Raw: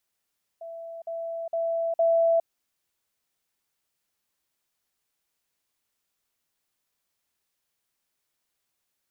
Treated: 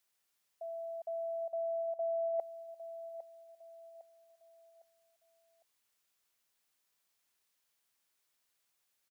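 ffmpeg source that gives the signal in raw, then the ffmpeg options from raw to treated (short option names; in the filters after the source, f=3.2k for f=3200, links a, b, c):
-f lavfi -i "aevalsrc='pow(10,(-36+6*floor(t/0.46))/20)*sin(2*PI*665*t)*clip(min(mod(t,0.46),0.41-mod(t,0.46))/0.005,0,1)':d=1.84:s=44100"
-af "lowshelf=f=500:g=-7,areverse,acompressor=threshold=-36dB:ratio=5,areverse,aecho=1:1:806|1612|2418|3224:0.237|0.0901|0.0342|0.013"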